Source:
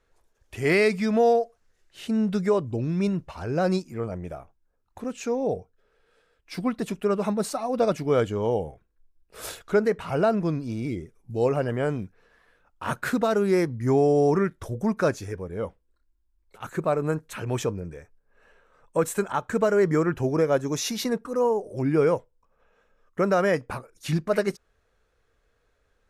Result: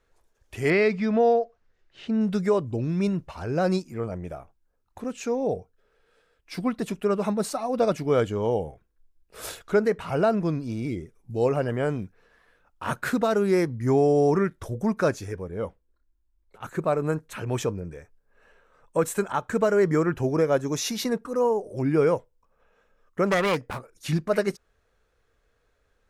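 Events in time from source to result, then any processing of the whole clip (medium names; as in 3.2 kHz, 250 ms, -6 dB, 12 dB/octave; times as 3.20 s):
0.70–2.21 s: distance through air 160 m
15.50–17.87 s: tape noise reduction on one side only decoder only
23.26–23.92 s: self-modulated delay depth 0.32 ms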